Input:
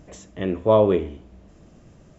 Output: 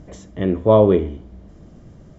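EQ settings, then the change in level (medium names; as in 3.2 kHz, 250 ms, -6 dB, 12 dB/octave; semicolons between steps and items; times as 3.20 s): low-pass 6.9 kHz; bass shelf 410 Hz +6.5 dB; band-stop 2.6 kHz, Q 8.3; +1.0 dB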